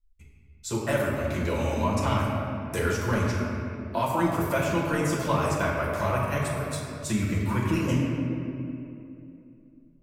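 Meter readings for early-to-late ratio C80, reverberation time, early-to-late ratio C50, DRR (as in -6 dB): 1.0 dB, 2.8 s, 0.0 dB, -6.0 dB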